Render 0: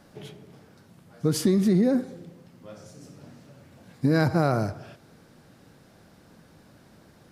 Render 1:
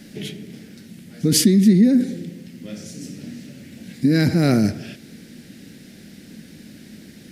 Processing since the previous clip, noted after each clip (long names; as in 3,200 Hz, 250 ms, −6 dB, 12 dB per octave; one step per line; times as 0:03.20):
drawn EQ curve 130 Hz 0 dB, 220 Hz +12 dB, 1,100 Hz −14 dB, 1,900 Hz +8 dB
in parallel at −3 dB: compressor whose output falls as the input rises −21 dBFS, ratio −0.5
on the sum: level −2 dB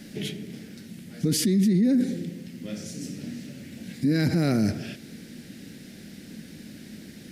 brickwall limiter −14.5 dBFS, peak gain reduction 10.5 dB
level −1 dB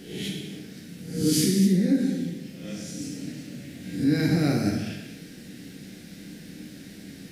peak hold with a rise ahead of every peak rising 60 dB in 0.61 s
reverb whose tail is shaped and stops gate 340 ms falling, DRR −1 dB
level −4.5 dB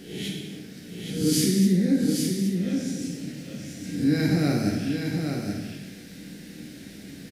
single-tap delay 821 ms −5.5 dB